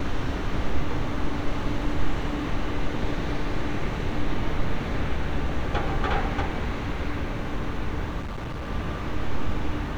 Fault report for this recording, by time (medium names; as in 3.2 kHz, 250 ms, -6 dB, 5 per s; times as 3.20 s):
8.22–8.70 s: clipped -29 dBFS